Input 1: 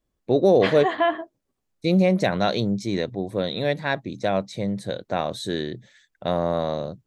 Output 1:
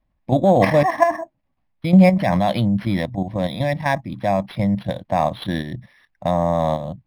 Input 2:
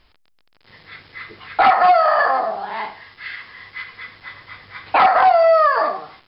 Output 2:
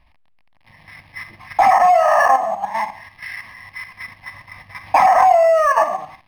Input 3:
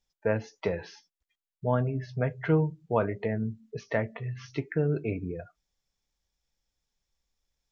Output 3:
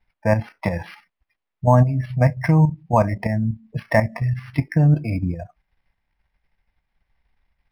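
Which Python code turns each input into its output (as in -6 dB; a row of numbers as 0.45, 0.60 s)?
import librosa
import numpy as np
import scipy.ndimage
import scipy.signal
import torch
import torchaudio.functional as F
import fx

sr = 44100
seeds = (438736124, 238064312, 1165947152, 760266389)

y = fx.high_shelf(x, sr, hz=3200.0, db=-5.0)
y = fx.level_steps(y, sr, step_db=9)
y = fx.fixed_phaser(y, sr, hz=2100.0, stages=8)
y = np.interp(np.arange(len(y)), np.arange(len(y))[::6], y[::6])
y = librosa.util.normalize(y) * 10.0 ** (-1.5 / 20.0)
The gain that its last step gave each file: +12.5, +8.5, +17.5 dB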